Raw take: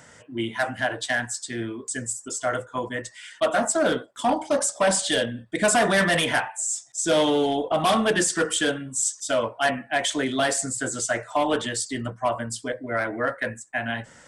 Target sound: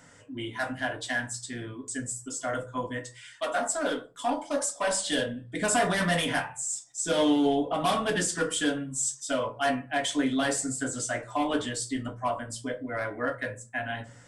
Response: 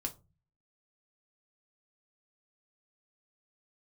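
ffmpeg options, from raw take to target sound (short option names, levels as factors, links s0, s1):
-filter_complex "[0:a]asettb=1/sr,asplit=3[s0][s1][s2];[s0]atrim=end=2.984[s3];[s1]atrim=start=2.98:end=5.04,asetpts=PTS-STARTPTS,afade=t=in:d=0.004:c=qsin,afade=t=out:st=2.056:d=0.004:c=qsin,equalizer=f=120:t=o:w=1.8:g=-15[s4];[s2]atrim=start=5.036[s5];[s3][s4]acrossfade=d=0.004:c1=hsin:c2=qsin[s6];[s6][s5]acrossfade=d=0.004:c1=qsin:c2=hsin[s7];[1:a]atrim=start_sample=2205[s8];[s7][s8]afir=irnorm=-1:irlink=0,volume=0.562"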